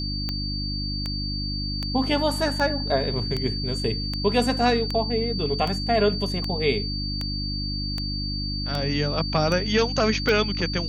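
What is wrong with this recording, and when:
mains hum 50 Hz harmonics 6 −30 dBFS
scratch tick 78 rpm −14 dBFS
whistle 4,600 Hz −30 dBFS

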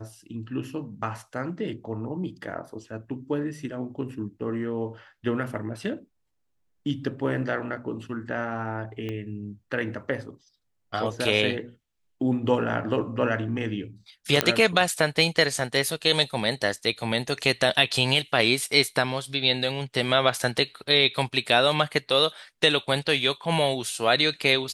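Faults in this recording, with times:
0:09.09: click −21 dBFS
0:14.41: click −3 dBFS

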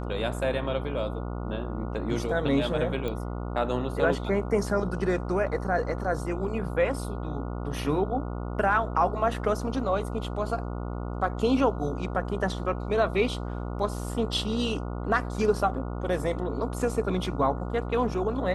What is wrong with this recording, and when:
mains buzz 60 Hz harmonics 24 −33 dBFS
0:03.08: click −20 dBFS

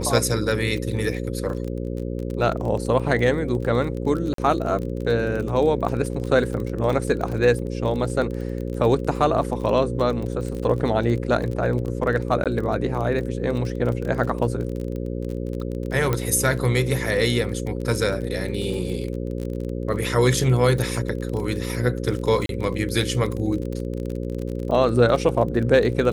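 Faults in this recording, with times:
mains buzz 60 Hz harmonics 9 −28 dBFS
surface crackle 26 per second −28 dBFS
0:04.34–0:04.38: drop-out 43 ms
0:12.44–0:12.46: drop-out 17 ms
0:16.13: click −9 dBFS
0:22.46–0:22.49: drop-out 32 ms

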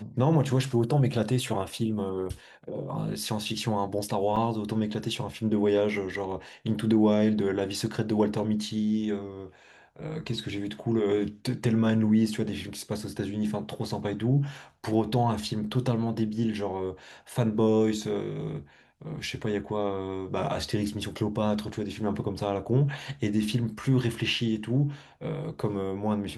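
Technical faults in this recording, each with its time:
0:04.36–0:04.37: drop-out 5.3 ms

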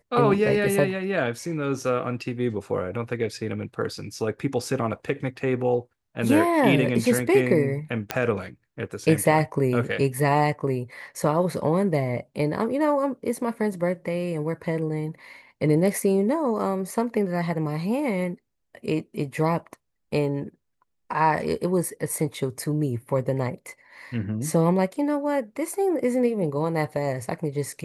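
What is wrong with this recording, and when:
0:08.11: click −8 dBFS

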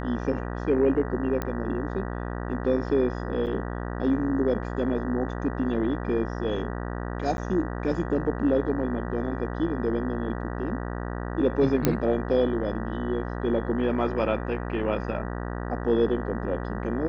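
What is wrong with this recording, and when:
mains buzz 60 Hz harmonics 32 −32 dBFS
0:01.42: click −15 dBFS
0:03.46–0:03.47: drop-out 8.2 ms
0:07.37–0:07.38: drop-out 11 ms
0:11.85: click −6 dBFS

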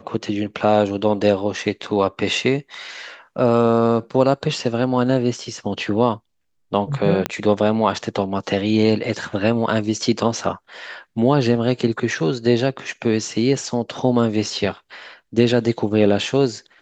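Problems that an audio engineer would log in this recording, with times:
0:07.26: click −6 dBFS

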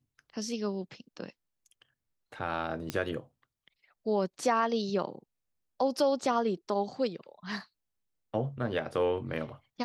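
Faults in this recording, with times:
0:02.90: click −17 dBFS

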